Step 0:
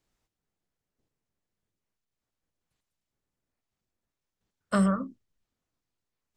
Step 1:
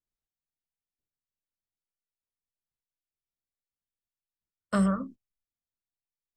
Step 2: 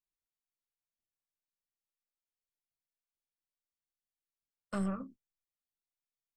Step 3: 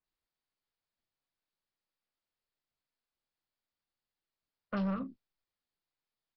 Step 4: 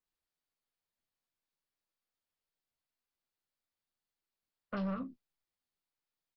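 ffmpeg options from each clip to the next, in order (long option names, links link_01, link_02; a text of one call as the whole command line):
ffmpeg -i in.wav -af "agate=range=-18dB:threshold=-44dB:ratio=16:detection=peak,lowshelf=frequency=92:gain=7,volume=-2dB" out.wav
ffmpeg -i in.wav -af "alimiter=limit=-19dB:level=0:latency=1:release=77,aeval=exprs='0.112*(cos(1*acos(clip(val(0)/0.112,-1,1)))-cos(1*PI/2))+0.0251*(cos(2*acos(clip(val(0)/0.112,-1,1)))-cos(2*PI/2))':channel_layout=same,volume=-8dB" out.wav
ffmpeg -i in.wav -filter_complex "[0:a]aresample=11025,asoftclip=type=tanh:threshold=-35.5dB,aresample=44100,acrossover=split=2700[link_01][link_02];[link_02]adelay=40[link_03];[link_01][link_03]amix=inputs=2:normalize=0,volume=6.5dB" out.wav
ffmpeg -i in.wav -filter_complex "[0:a]asplit=2[link_01][link_02];[link_02]adelay=12,volume=-10.5dB[link_03];[link_01][link_03]amix=inputs=2:normalize=0,volume=-2.5dB" out.wav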